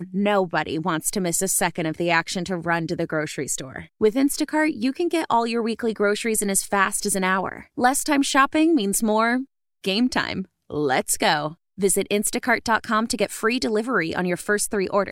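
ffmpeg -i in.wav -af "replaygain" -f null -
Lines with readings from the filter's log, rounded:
track_gain = +2.7 dB
track_peak = 0.443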